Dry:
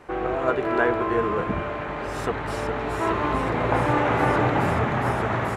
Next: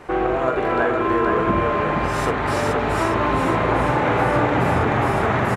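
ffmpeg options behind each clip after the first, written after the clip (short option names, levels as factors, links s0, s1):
-filter_complex "[0:a]acompressor=threshold=0.0631:ratio=6,asplit=2[s0][s1];[s1]aecho=0:1:46|471:0.447|0.708[s2];[s0][s2]amix=inputs=2:normalize=0,volume=2.11"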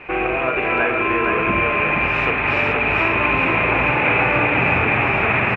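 -af "lowpass=f=2500:t=q:w=15,volume=0.794"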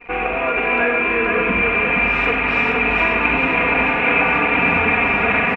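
-af "aecho=1:1:4.2:0.85,anlmdn=3.98,aecho=1:1:96:0.398,volume=0.794"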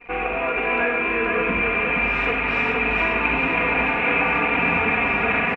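-filter_complex "[0:a]asplit=2[s0][s1];[s1]adelay=18,volume=0.237[s2];[s0][s2]amix=inputs=2:normalize=0,volume=0.631"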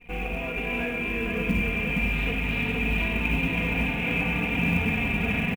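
-af "firequalizer=gain_entry='entry(180,0);entry(320,-13);entry(830,-17);entry(1200,-23);entry(3300,-4);entry(6400,-26)':delay=0.05:min_phase=1,acrusher=bits=7:mode=log:mix=0:aa=0.000001,volume=1.88"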